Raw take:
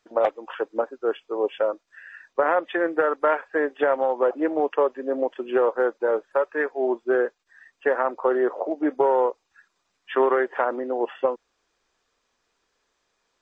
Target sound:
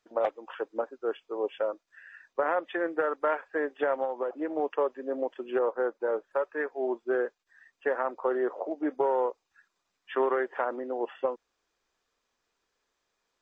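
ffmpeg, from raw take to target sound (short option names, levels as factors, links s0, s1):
-filter_complex "[0:a]asettb=1/sr,asplit=3[s0][s1][s2];[s0]atrim=end=4.044[s3];[s1]atrim=start=4.04:end=4.5,asetpts=PTS-STARTPTS,afade=t=in:d=0.004:c=qsin,afade=t=out:st=0.456:d=0.004:c=qsin,acompressor=threshold=0.0891:ratio=6[s4];[s2]atrim=start=4.496[s5];[s3][s4]acrossfade=d=0.004:c1=hsin:c2=qsin[s6];[s6][s5]acrossfade=d=0.004:c1=qsin:c2=hsin,asettb=1/sr,asplit=3[s7][s8][s9];[s7]atrim=end=5.594[s10];[s8]atrim=start=5.59:end=6.72,asetpts=PTS-STARTPTS,afade=t=in:d=0.004:c=qsin,afade=t=out:st=1.126:d=0.004:c=qsin,adynamicequalizer=threshold=0.0126:dfrequency=2100:dqfactor=0.7:tfrequency=2100:tqfactor=0.7:attack=5:release=100:ratio=0.375:range=3:mode=cutabove:tftype=highshelf[s11];[s9]atrim=start=6.716[s12];[s10][s11]acrossfade=d=0.004:c1=hsin:c2=qsin[s13];[s13][s12]acrossfade=d=0.004:c1=qsin:c2=hsin,volume=0.473"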